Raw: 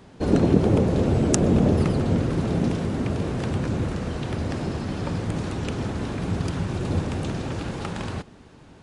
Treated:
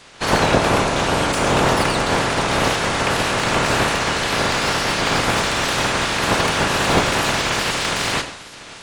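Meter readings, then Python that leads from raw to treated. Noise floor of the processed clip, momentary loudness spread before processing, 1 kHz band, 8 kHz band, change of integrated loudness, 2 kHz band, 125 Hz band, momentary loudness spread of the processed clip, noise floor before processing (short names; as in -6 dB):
-38 dBFS, 10 LU, +16.0 dB, +13.0 dB, +6.5 dB, +19.0 dB, -2.0 dB, 3 LU, -49 dBFS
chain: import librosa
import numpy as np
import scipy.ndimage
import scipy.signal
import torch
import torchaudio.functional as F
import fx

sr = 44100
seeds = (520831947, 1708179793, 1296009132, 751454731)

y = fx.spec_clip(x, sr, under_db=27)
y = fx.rider(y, sr, range_db=10, speed_s=2.0)
y = fx.wow_flutter(y, sr, seeds[0], rate_hz=2.1, depth_cents=130.0)
y = fx.rev_gated(y, sr, seeds[1], gate_ms=240, shape='falling', drr_db=6.5)
y = fx.slew_limit(y, sr, full_power_hz=270.0)
y = y * librosa.db_to_amplitude(4.5)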